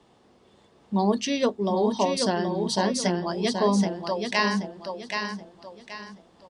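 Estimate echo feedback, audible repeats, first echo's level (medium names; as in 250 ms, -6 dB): 33%, 4, -5.5 dB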